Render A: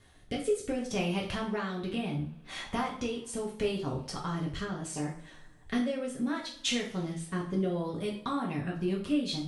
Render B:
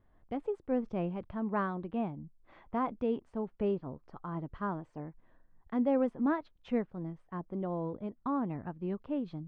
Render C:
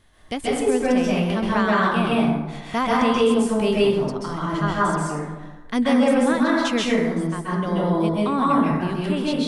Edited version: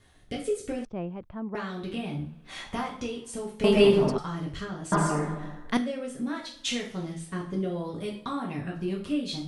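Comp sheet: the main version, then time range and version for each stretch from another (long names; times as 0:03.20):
A
0:00.85–0:01.55: punch in from B
0:03.64–0:04.18: punch in from C
0:04.92–0:05.77: punch in from C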